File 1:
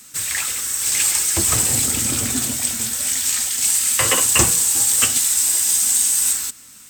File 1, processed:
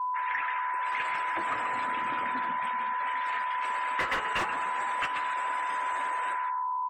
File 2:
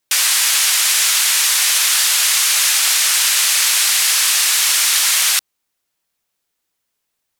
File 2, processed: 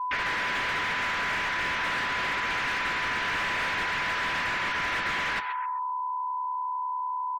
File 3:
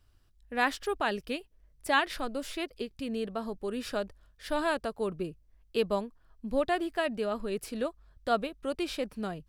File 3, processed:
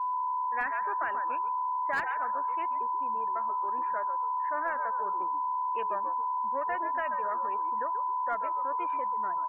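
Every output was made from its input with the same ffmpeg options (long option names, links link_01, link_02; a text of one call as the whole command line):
ffmpeg -i in.wav -filter_complex "[0:a]aeval=exprs='if(lt(val(0),0),0.447*val(0),val(0))':channel_layout=same,aeval=exprs='val(0)+0.0316*sin(2*PI*1000*n/s)':channel_layout=same,lowpass=frequency=1800:width_type=q:width=1.9,aemphasis=mode=production:type=riaa,asplit=5[link_01][link_02][link_03][link_04][link_05];[link_02]adelay=133,afreqshift=-71,volume=-9.5dB[link_06];[link_03]adelay=266,afreqshift=-142,volume=-17.5dB[link_07];[link_04]adelay=399,afreqshift=-213,volume=-25.4dB[link_08];[link_05]adelay=532,afreqshift=-284,volume=-33.4dB[link_09];[link_01][link_06][link_07][link_08][link_09]amix=inputs=5:normalize=0,agate=range=-20dB:threshold=-17dB:ratio=16:detection=peak,equalizer=frequency=410:width_type=o:width=0.46:gain=-3,bandreject=frequency=428.6:width_type=h:width=4,bandreject=frequency=857.2:width_type=h:width=4,bandreject=frequency=1285.8:width_type=h:width=4,asplit=2[link_10][link_11];[link_11]highpass=frequency=720:poles=1,volume=28dB,asoftclip=type=tanh:threshold=-11dB[link_12];[link_10][link_12]amix=inputs=2:normalize=0,lowpass=frequency=1000:poles=1,volume=-6dB,afftdn=noise_reduction=33:noise_floor=-44,asoftclip=type=hard:threshold=-20.5dB,acompressor=threshold=-30dB:ratio=6,volume=3dB" out.wav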